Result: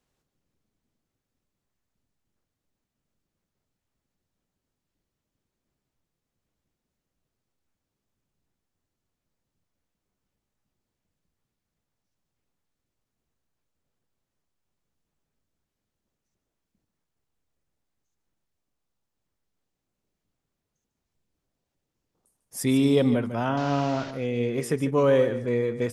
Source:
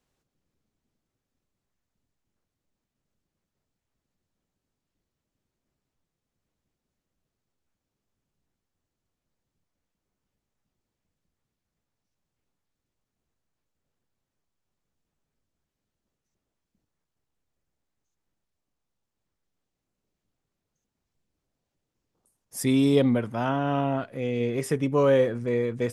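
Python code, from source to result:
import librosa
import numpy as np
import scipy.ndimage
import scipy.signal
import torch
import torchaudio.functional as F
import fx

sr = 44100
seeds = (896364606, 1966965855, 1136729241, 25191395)

y = fx.delta_mod(x, sr, bps=32000, step_db=-32.5, at=(23.57, 24.11))
y = y + 10.0 ** (-12.0 / 20.0) * np.pad(y, (int(148 * sr / 1000.0), 0))[:len(y)]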